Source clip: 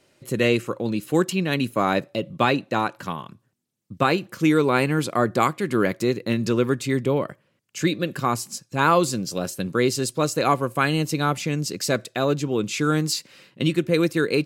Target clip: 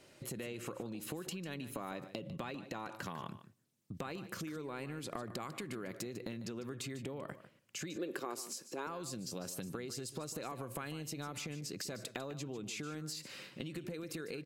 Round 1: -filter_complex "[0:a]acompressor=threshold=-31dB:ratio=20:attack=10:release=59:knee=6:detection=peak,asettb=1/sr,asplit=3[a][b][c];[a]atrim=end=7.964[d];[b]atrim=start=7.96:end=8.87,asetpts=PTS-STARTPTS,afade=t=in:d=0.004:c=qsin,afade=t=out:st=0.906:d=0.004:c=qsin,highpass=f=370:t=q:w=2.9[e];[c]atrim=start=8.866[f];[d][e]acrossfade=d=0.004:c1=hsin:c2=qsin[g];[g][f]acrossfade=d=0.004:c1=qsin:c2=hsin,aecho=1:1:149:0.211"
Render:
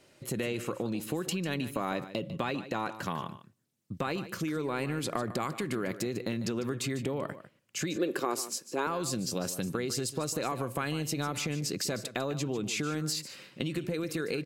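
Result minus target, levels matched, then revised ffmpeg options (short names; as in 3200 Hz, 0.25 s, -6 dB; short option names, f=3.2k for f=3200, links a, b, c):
compressor: peak gain reduction -10.5 dB
-filter_complex "[0:a]acompressor=threshold=-42dB:ratio=20:attack=10:release=59:knee=6:detection=peak,asettb=1/sr,asplit=3[a][b][c];[a]atrim=end=7.964[d];[b]atrim=start=7.96:end=8.87,asetpts=PTS-STARTPTS,afade=t=in:d=0.004:c=qsin,afade=t=out:st=0.906:d=0.004:c=qsin,highpass=f=370:t=q:w=2.9[e];[c]atrim=start=8.866[f];[d][e]acrossfade=d=0.004:c1=hsin:c2=qsin[g];[g][f]acrossfade=d=0.004:c1=qsin:c2=hsin,aecho=1:1:149:0.211"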